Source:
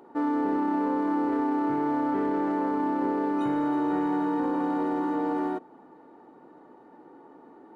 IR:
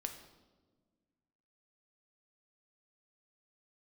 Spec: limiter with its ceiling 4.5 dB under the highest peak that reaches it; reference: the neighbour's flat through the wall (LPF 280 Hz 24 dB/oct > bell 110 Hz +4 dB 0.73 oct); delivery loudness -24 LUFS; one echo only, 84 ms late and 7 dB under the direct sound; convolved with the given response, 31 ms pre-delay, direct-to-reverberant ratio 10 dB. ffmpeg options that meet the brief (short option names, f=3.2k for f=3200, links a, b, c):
-filter_complex "[0:a]alimiter=limit=-21.5dB:level=0:latency=1,aecho=1:1:84:0.447,asplit=2[a][b];[1:a]atrim=start_sample=2205,adelay=31[c];[b][c]afir=irnorm=-1:irlink=0,volume=-8.5dB[d];[a][d]amix=inputs=2:normalize=0,lowpass=f=280:w=0.5412,lowpass=f=280:w=1.3066,equalizer=f=110:t=o:w=0.73:g=4,volume=10dB"